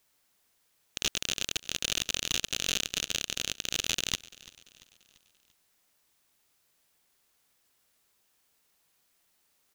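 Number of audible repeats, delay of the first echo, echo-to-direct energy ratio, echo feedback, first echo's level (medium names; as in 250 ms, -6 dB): 3, 341 ms, -19.5 dB, 49%, -20.5 dB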